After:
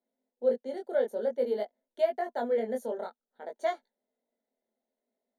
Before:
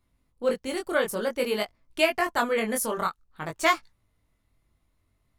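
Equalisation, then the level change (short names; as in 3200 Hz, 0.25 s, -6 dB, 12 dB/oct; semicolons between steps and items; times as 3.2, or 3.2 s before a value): running mean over 17 samples; elliptic high-pass 240 Hz, stop band 40 dB; fixed phaser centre 310 Hz, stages 6; 0.0 dB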